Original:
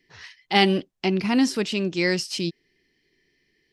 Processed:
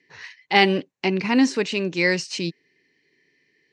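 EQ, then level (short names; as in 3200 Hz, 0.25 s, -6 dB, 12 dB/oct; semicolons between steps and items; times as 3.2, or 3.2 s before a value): speaker cabinet 180–6600 Hz, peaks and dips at 210 Hz -7 dB, 350 Hz -6 dB, 690 Hz -7 dB, 1300 Hz -6 dB, 3300 Hz -9 dB, 5100 Hz -9 dB; +6.0 dB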